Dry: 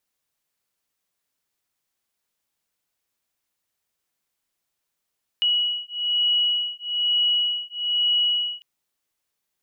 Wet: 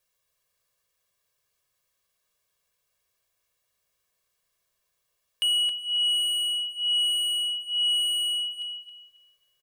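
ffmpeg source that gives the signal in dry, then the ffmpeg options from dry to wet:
-f lavfi -i "aevalsrc='0.0708*(sin(2*PI*2920*t)+sin(2*PI*2921.1*t))':d=3.2:s=44100"
-filter_complex "[0:a]aecho=1:1:1.8:0.93,asoftclip=type=tanh:threshold=-21.5dB,asplit=2[a][b];[b]adelay=271,lowpass=f=2.5k:p=1,volume=-4dB,asplit=2[c][d];[d]adelay=271,lowpass=f=2.5k:p=1,volume=0.37,asplit=2[e][f];[f]adelay=271,lowpass=f=2.5k:p=1,volume=0.37,asplit=2[g][h];[h]adelay=271,lowpass=f=2.5k:p=1,volume=0.37,asplit=2[i][j];[j]adelay=271,lowpass=f=2.5k:p=1,volume=0.37[k];[a][c][e][g][i][k]amix=inputs=6:normalize=0"

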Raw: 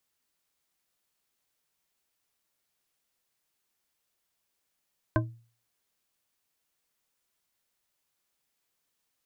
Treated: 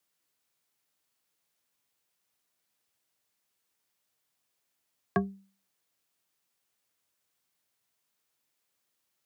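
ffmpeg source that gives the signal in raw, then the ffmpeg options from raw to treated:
-f lavfi -i "aevalsrc='0.0841*pow(10,-3*t/0.42)*sin(2*PI*116*t)+0.075*pow(10,-3*t/0.207)*sin(2*PI*319.8*t)+0.0668*pow(10,-3*t/0.129)*sin(2*PI*626.9*t)+0.0596*pow(10,-3*t/0.091)*sin(2*PI*1036.2*t)+0.0531*pow(10,-3*t/0.068)*sin(2*PI*1547.4*t)':d=0.89:s=44100"
-af "afreqshift=79"

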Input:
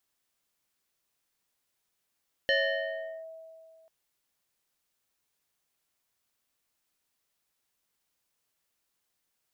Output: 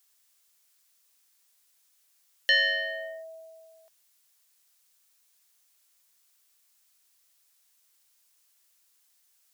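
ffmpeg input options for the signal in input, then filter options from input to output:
-f lavfi -i "aevalsrc='0.0891*pow(10,-3*t/2.3)*sin(2*PI*648*t+2.1*clip(1-t/0.76,0,1)*sin(2*PI*1.85*648*t))':d=1.39:s=44100"
-filter_complex "[0:a]bass=f=250:g=-12,treble=f=4k:g=7,acrossover=split=170|1100[a][b][c];[b]alimiter=level_in=11dB:limit=-24dB:level=0:latency=1:release=33,volume=-11dB[d];[c]acontrast=58[e];[a][d][e]amix=inputs=3:normalize=0"

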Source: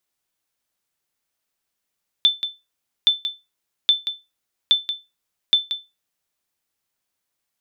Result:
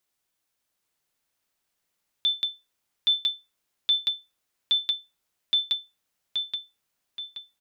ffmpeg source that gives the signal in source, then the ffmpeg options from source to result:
-f lavfi -i "aevalsrc='0.447*(sin(2*PI*3530*mod(t,0.82))*exp(-6.91*mod(t,0.82)/0.23)+0.316*sin(2*PI*3530*max(mod(t,0.82)-0.18,0))*exp(-6.91*max(mod(t,0.82)-0.18,0)/0.23))':d=4.1:s=44100"
-filter_complex "[0:a]alimiter=limit=-18dB:level=0:latency=1,asplit=2[a][b];[b]adelay=826,lowpass=f=4.7k:p=1,volume=-3dB,asplit=2[c][d];[d]adelay=826,lowpass=f=4.7k:p=1,volume=0.5,asplit=2[e][f];[f]adelay=826,lowpass=f=4.7k:p=1,volume=0.5,asplit=2[g][h];[h]adelay=826,lowpass=f=4.7k:p=1,volume=0.5,asplit=2[i][j];[j]adelay=826,lowpass=f=4.7k:p=1,volume=0.5,asplit=2[k][l];[l]adelay=826,lowpass=f=4.7k:p=1,volume=0.5,asplit=2[m][n];[n]adelay=826,lowpass=f=4.7k:p=1,volume=0.5[o];[c][e][g][i][k][m][o]amix=inputs=7:normalize=0[p];[a][p]amix=inputs=2:normalize=0"

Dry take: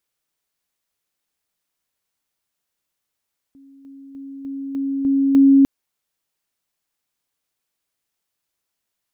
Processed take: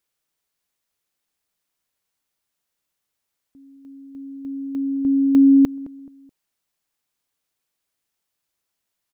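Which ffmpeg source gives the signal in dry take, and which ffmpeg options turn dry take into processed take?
-f lavfi -i "aevalsrc='pow(10,(-44+6*floor(t/0.3))/20)*sin(2*PI*274*t)':d=2.1:s=44100"
-filter_complex "[0:a]asplit=2[a][b];[b]adelay=214,lowpass=f=900:p=1,volume=-18.5dB,asplit=2[c][d];[d]adelay=214,lowpass=f=900:p=1,volume=0.38,asplit=2[e][f];[f]adelay=214,lowpass=f=900:p=1,volume=0.38[g];[a][c][e][g]amix=inputs=4:normalize=0"

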